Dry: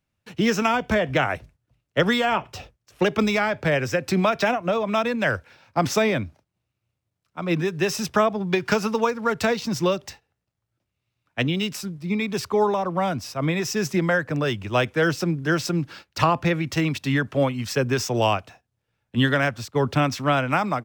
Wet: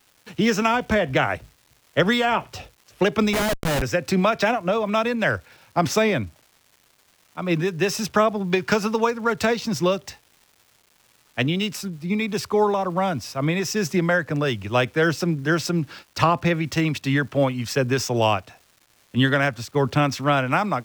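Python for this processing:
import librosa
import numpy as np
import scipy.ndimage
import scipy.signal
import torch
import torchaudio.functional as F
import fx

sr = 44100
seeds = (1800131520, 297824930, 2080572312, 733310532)

y = fx.dmg_crackle(x, sr, seeds[0], per_s=600.0, level_db=-45.0)
y = fx.schmitt(y, sr, flips_db=-24.0, at=(3.33, 3.82))
y = y * 10.0 ** (1.0 / 20.0)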